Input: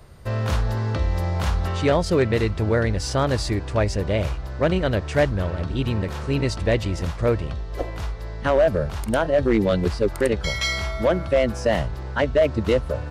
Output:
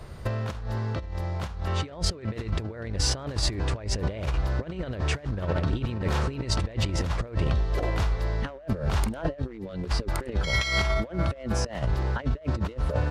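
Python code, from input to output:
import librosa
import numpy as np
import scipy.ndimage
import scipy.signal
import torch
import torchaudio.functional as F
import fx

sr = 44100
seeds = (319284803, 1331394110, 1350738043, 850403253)

y = fx.high_shelf(x, sr, hz=9300.0, db=-8.0)
y = fx.over_compress(y, sr, threshold_db=-27.0, ratio=-0.5)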